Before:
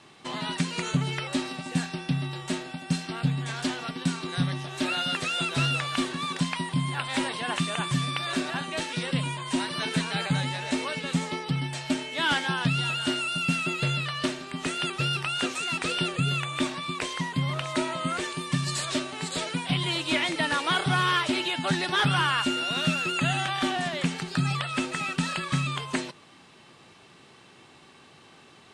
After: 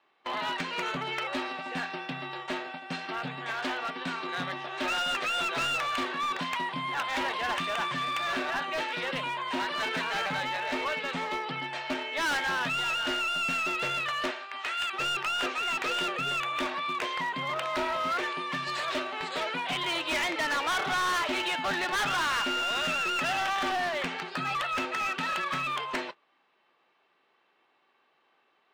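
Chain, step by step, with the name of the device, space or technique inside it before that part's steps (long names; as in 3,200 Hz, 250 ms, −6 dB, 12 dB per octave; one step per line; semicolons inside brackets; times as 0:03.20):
0:14.30–0:14.92: high-pass filter 520 Hz → 1,300 Hz 12 dB per octave
walkie-talkie (band-pass filter 510–2,500 Hz; hard clipping −30.5 dBFS, distortion −9 dB; noise gate −44 dBFS, range −17 dB)
level +4.5 dB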